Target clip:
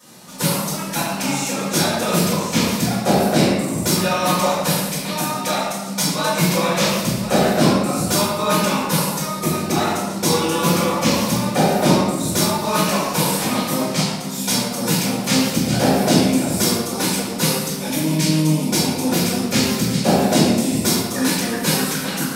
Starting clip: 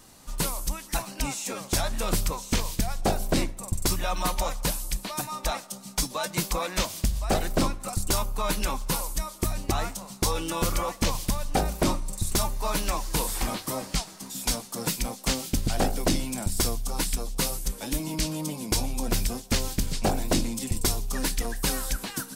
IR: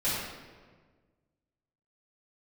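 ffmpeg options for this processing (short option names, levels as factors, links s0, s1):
-filter_complex "[0:a]highpass=f=130:w=0.5412,highpass=f=130:w=1.3066[s0];[1:a]atrim=start_sample=2205[s1];[s0][s1]afir=irnorm=-1:irlink=0,volume=1.12"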